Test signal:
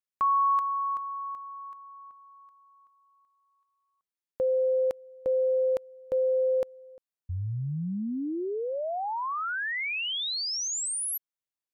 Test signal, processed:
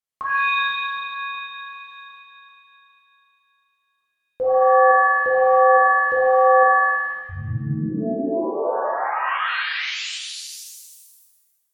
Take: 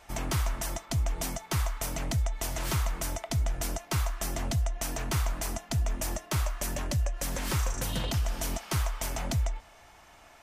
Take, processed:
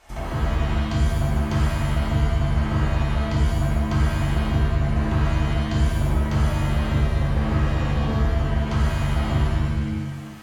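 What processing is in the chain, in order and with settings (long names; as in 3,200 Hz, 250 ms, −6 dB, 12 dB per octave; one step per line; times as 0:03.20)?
treble cut that deepens with the level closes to 1,100 Hz, closed at −27 dBFS
reverb with rising layers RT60 1.2 s, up +7 semitones, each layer −2 dB, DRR −5 dB
level −1.5 dB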